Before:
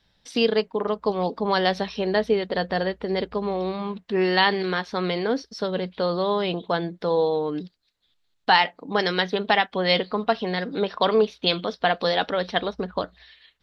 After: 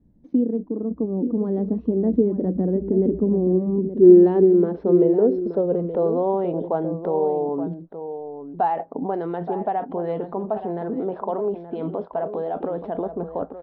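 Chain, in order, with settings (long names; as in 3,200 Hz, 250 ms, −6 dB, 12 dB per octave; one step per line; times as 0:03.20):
source passing by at 0:03.15, 21 m/s, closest 29 metres
in parallel at 0 dB: compressor whose output falls as the input rises −47 dBFS, ratio −1
on the sum: low-pass filter sweep 280 Hz → 780 Hz, 0:03.42–0:06.42
dynamic equaliser 310 Hz, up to +6 dB, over −49 dBFS, Q 1.1
slap from a distant wall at 150 metres, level −10 dB
level +2 dB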